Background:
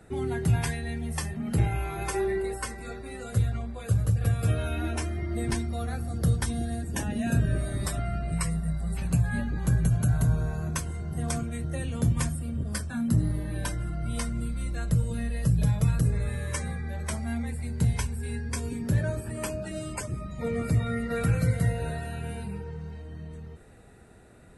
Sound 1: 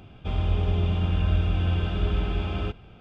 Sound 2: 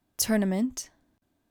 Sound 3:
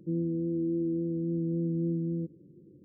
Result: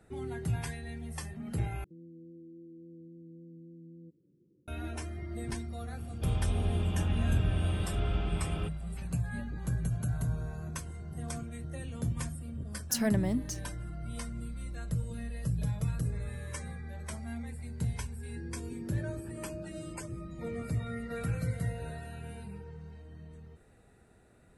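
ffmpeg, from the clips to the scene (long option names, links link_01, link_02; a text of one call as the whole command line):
ffmpeg -i bed.wav -i cue0.wav -i cue1.wav -i cue2.wav -filter_complex "[3:a]asplit=2[link_01][link_02];[0:a]volume=-8.5dB[link_03];[link_01]alimiter=level_in=7.5dB:limit=-24dB:level=0:latency=1:release=267,volume=-7.5dB[link_04];[link_02]asplit=2[link_05][link_06];[link_06]adelay=33,volume=-12dB[link_07];[link_05][link_07]amix=inputs=2:normalize=0[link_08];[link_03]asplit=2[link_09][link_10];[link_09]atrim=end=1.844[link_11];[link_04]atrim=end=2.84,asetpts=PTS-STARTPTS,volume=-13dB[link_12];[link_10]atrim=start=4.676[link_13];[1:a]atrim=end=3,asetpts=PTS-STARTPTS,volume=-6.5dB,afade=type=in:duration=0.004:curve=hsin,afade=type=out:start_time=2.996:duration=0.004:curve=hsin,adelay=5970[link_14];[2:a]atrim=end=1.5,asetpts=PTS-STARTPTS,volume=-4.5dB,afade=type=in:duration=0.004:curve=hsin,afade=type=out:start_time=1.496:duration=0.004:curve=hsin,adelay=12720[link_15];[link_08]atrim=end=2.84,asetpts=PTS-STARTPTS,volume=-16.5dB,afade=type=in:duration=0.004:curve=hsin,afade=type=out:start_time=2.836:duration=0.004:curve=hsin,adelay=18290[link_16];[link_11][link_12]acrossfade=duration=0.004:curve1=hsin:curve2=hsin[link_17];[link_17][link_13]acrossfade=duration=0.004:curve1=hsin:curve2=hsin[link_18];[link_18][link_14][link_15][link_16]amix=inputs=4:normalize=0" out.wav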